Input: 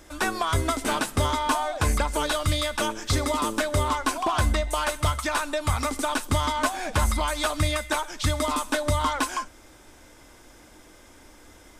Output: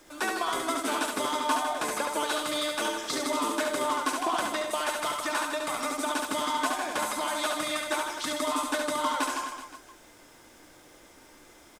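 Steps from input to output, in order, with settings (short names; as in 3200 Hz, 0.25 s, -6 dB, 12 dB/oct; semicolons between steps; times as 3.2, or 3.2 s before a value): HPF 240 Hz 24 dB/oct; added noise pink -59 dBFS; on a send: reverse bouncing-ball echo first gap 70 ms, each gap 1.2×, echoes 5; on the sum: gain -4.5 dB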